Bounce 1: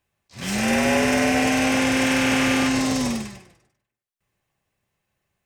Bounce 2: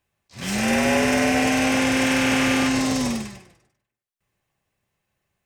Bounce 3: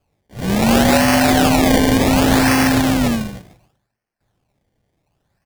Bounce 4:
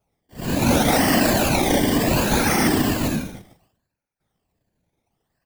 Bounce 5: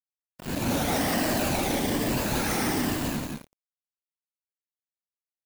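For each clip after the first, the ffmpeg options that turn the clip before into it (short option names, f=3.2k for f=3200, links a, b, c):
-af anull
-af "aecho=1:1:1.2:0.99,acrusher=samples=23:mix=1:aa=0.000001:lfo=1:lforange=23:lforate=0.68,equalizer=f=1.1k:t=o:w=0.72:g=-4.5,volume=5dB"
-af "afftfilt=real='re*pow(10,8/40*sin(2*PI*(1.4*log(max(b,1)*sr/1024/100)/log(2)-(-1.2)*(pts-256)/sr)))':imag='im*pow(10,8/40*sin(2*PI*(1.4*log(max(b,1)*sr/1024/100)/log(2)-(-1.2)*(pts-256)/sr)))':win_size=1024:overlap=0.75,afftfilt=real='hypot(re,im)*cos(2*PI*random(0))':imag='hypot(re,im)*sin(2*PI*random(1))':win_size=512:overlap=0.75,crystalizer=i=0.5:c=0"
-af "asoftclip=type=tanh:threshold=-23dB,acrusher=bits=3:mix=0:aa=0.5,aecho=1:1:177:0.631"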